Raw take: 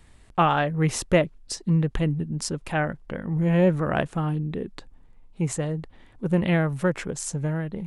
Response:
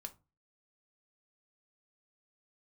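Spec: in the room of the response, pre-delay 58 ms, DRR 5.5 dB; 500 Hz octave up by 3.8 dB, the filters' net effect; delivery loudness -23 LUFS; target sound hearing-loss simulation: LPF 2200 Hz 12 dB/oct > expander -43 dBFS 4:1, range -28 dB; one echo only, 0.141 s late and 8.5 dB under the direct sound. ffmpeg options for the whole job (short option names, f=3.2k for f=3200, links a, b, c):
-filter_complex "[0:a]equalizer=f=500:t=o:g=4.5,aecho=1:1:141:0.376,asplit=2[a][b];[1:a]atrim=start_sample=2205,adelay=58[c];[b][c]afir=irnorm=-1:irlink=0,volume=-1dB[d];[a][d]amix=inputs=2:normalize=0,lowpass=2.2k,agate=range=-28dB:threshold=-43dB:ratio=4,volume=-0.5dB"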